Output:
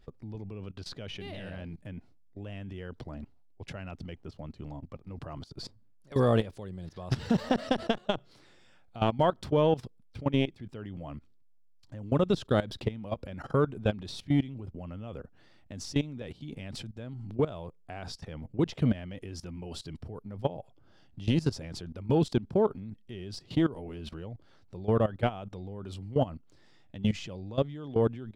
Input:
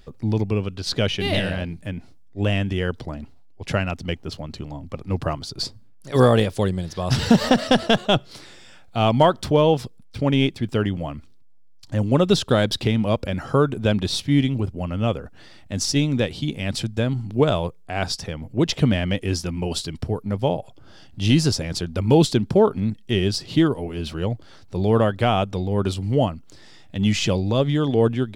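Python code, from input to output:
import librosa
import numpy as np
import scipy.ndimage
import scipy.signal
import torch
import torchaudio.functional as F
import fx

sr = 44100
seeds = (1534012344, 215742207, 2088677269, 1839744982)

y = fx.high_shelf(x, sr, hz=3200.0, db=-8.0)
y = fx.level_steps(y, sr, step_db=18)
y = fx.transformer_sat(y, sr, knee_hz=210.0)
y = y * 10.0 ** (-4.0 / 20.0)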